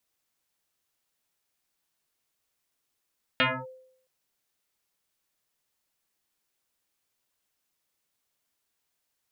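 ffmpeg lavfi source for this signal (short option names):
-f lavfi -i "aevalsrc='0.133*pow(10,-3*t/0.7)*sin(2*PI*517*t+7.6*clip(1-t/0.26,0,1)*sin(2*PI*0.75*517*t))':d=0.67:s=44100"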